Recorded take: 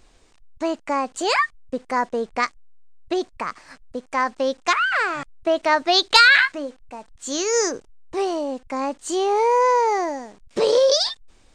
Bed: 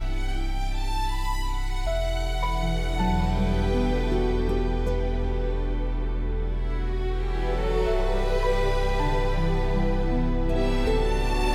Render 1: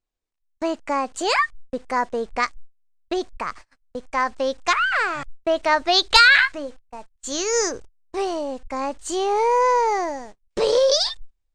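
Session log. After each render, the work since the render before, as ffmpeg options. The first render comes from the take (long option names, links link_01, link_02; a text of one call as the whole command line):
ffmpeg -i in.wav -af "agate=range=-32dB:threshold=-39dB:ratio=16:detection=peak,asubboost=boost=5.5:cutoff=86" out.wav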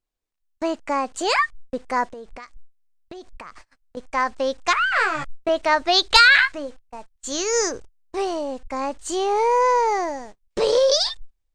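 ffmpeg -i in.wav -filter_complex "[0:a]asettb=1/sr,asplit=3[link_01][link_02][link_03];[link_01]atrim=end=2.054[link_04];[link_02]atrim=start=2.05:end=3.97,asetpts=PTS-STARTPTS,afade=type=in:duration=0.004:curve=qsin,afade=type=out:start_time=1.916:duration=0.004:curve=qsin,acompressor=threshold=-34dB:ratio=12:attack=3.2:release=140:knee=1:detection=peak[link_05];[link_03]atrim=start=3.966[link_06];[link_04][link_05]acrossfade=duration=0.004:curve1=hsin:curve2=qsin[link_07];[link_07][link_06]acrossfade=duration=0.004:curve1=qsin:curve2=hsin,asettb=1/sr,asplit=3[link_08][link_09][link_10];[link_08]atrim=end=4.954[link_11];[link_09]atrim=start=4.95:end=5.49,asetpts=PTS-STARTPTS,afade=type=in:duration=0.004:curve=qsin,afade=type=out:start_time=0.536:duration=0.004:curve=qsin,asplit=2[link_12][link_13];[link_13]adelay=13,volume=-3dB[link_14];[link_12][link_14]amix=inputs=2:normalize=0,atrim=end_sample=23814[link_15];[link_10]atrim=start=5.486[link_16];[link_11][link_15]acrossfade=duration=0.004:curve1=hsin:curve2=qsin[link_17];[link_17][link_16]acrossfade=duration=0.004:curve1=qsin:curve2=hsin" out.wav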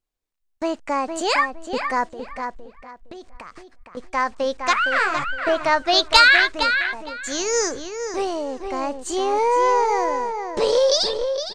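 ffmpeg -i in.wav -filter_complex "[0:a]asplit=2[link_01][link_02];[link_02]adelay=462,lowpass=frequency=3400:poles=1,volume=-6.5dB,asplit=2[link_03][link_04];[link_04]adelay=462,lowpass=frequency=3400:poles=1,volume=0.23,asplit=2[link_05][link_06];[link_06]adelay=462,lowpass=frequency=3400:poles=1,volume=0.23[link_07];[link_01][link_03][link_05][link_07]amix=inputs=4:normalize=0" out.wav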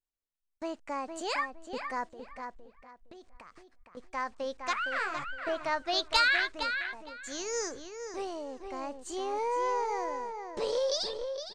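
ffmpeg -i in.wav -af "volume=-12.5dB" out.wav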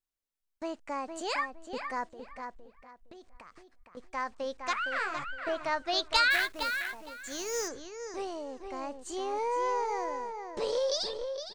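ffmpeg -i in.wav -filter_complex "[0:a]asplit=3[link_01][link_02][link_03];[link_01]afade=type=out:start_time=6.3:duration=0.02[link_04];[link_02]acrusher=bits=3:mode=log:mix=0:aa=0.000001,afade=type=in:start_time=6.3:duration=0.02,afade=type=out:start_time=7.67:duration=0.02[link_05];[link_03]afade=type=in:start_time=7.67:duration=0.02[link_06];[link_04][link_05][link_06]amix=inputs=3:normalize=0" out.wav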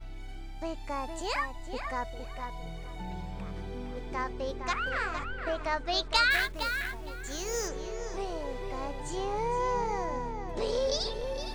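ffmpeg -i in.wav -i bed.wav -filter_complex "[1:a]volume=-15.5dB[link_01];[0:a][link_01]amix=inputs=2:normalize=0" out.wav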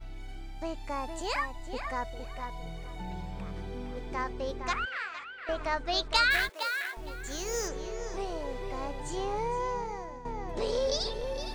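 ffmpeg -i in.wav -filter_complex "[0:a]asettb=1/sr,asplit=3[link_01][link_02][link_03];[link_01]atrim=end=4.854[link_04];[link_02]atrim=start=4.85:end=5.49,asetpts=PTS-STARTPTS,afade=type=in:duration=0.004:curve=qsin,afade=type=out:start_time=0.636:duration=0.004:curve=qsin,bandpass=frequency=2700:width_type=q:width=0.96[link_05];[link_03]atrim=start=5.486[link_06];[link_04][link_05]acrossfade=duration=0.004:curve1=hsin:curve2=qsin[link_07];[link_07][link_06]acrossfade=duration=0.004:curve1=qsin:curve2=hsin,asettb=1/sr,asplit=3[link_08][link_09][link_10];[link_08]atrim=end=6.494[link_11];[link_09]atrim=start=6.49:end=6.97,asetpts=PTS-STARTPTS,afade=type=in:duration=0.004:curve=qsin,afade=type=out:start_time=0.476:duration=0.004:curve=qsin,highpass=frequency=430:width=0.5412,highpass=frequency=430:width=1.3066[link_12];[link_10]atrim=start=6.966[link_13];[link_11][link_12]acrossfade=duration=0.004:curve1=hsin:curve2=qsin[link_14];[link_14][link_13]acrossfade=duration=0.004:curve1=qsin:curve2=hsin,asplit=2[link_15][link_16];[link_15]atrim=end=10.25,asetpts=PTS-STARTPTS,afade=type=out:start_time=9.31:duration=0.94:silence=0.251189[link_17];[link_16]atrim=start=10.25,asetpts=PTS-STARTPTS,afade=type=in:duration=0.004:curve=hsin:silence=0.251189[link_18];[link_17][link_18]concat=n=2:v=0:a=1" out.wav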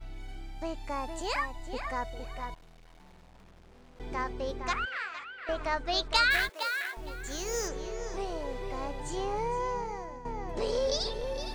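ffmpeg -i in.wav -filter_complex "[0:a]asettb=1/sr,asplit=3[link_01][link_02][link_03];[link_01]atrim=end=2.544[link_04];[link_02]atrim=start=2.54:end=4,asetpts=PTS-STARTPTS,afade=type=in:duration=0.004:curve=qsin,afade=type=out:start_time=1.456:duration=0.004:curve=qsin,aeval=exprs='(tanh(562*val(0)+0.7)-tanh(0.7))/562':channel_layout=same[link_05];[link_03]atrim=start=3.996[link_06];[link_04][link_05]acrossfade=duration=0.004:curve1=hsin:curve2=qsin[link_07];[link_07][link_06]acrossfade=duration=0.004:curve1=qsin:curve2=hsin,asettb=1/sr,asplit=3[link_08][link_09][link_10];[link_08]atrim=end=9.214[link_11];[link_09]atrim=start=9.21:end=10.84,asetpts=PTS-STARTPTS,afade=type=in:duration=0.004:curve=qsin,afade=type=out:start_time=1.626:duration=0.004:curve=qsin,bandreject=frequency=3700:width=12[link_12];[link_10]atrim=start=10.836[link_13];[link_11][link_12]acrossfade=duration=0.004:curve1=hsin:curve2=qsin[link_14];[link_14][link_13]acrossfade=duration=0.004:curve1=qsin:curve2=hsin" out.wav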